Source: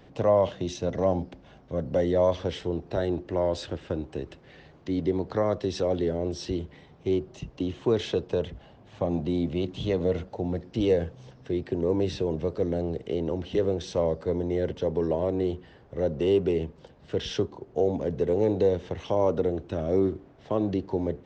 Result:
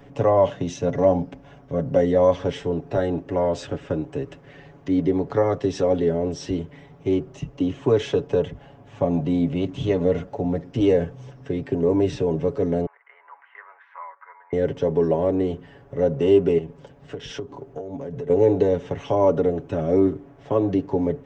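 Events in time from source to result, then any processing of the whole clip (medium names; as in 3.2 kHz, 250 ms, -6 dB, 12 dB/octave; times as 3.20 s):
12.86–14.53 s: elliptic band-pass 970–2100 Hz, stop band 70 dB
16.58–18.30 s: compression, threshold -34 dBFS
whole clip: peaking EQ 4.2 kHz -9.5 dB 0.7 oct; comb 7.1 ms, depth 67%; trim +4 dB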